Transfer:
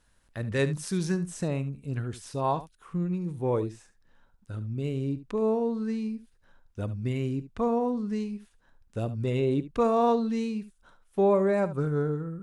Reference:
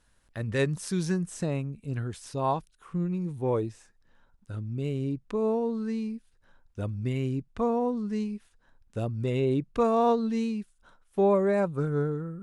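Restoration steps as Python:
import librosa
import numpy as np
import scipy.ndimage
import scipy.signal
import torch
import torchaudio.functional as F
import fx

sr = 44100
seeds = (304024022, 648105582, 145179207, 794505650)

y = fx.fix_echo_inverse(x, sr, delay_ms=73, level_db=-14.5)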